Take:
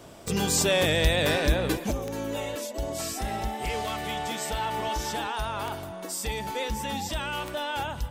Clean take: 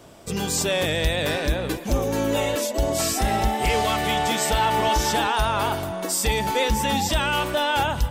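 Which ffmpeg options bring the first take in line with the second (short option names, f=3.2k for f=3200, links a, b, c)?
-af "adeclick=t=4,asetnsamples=n=441:p=0,asendcmd='1.91 volume volume 9dB',volume=0dB"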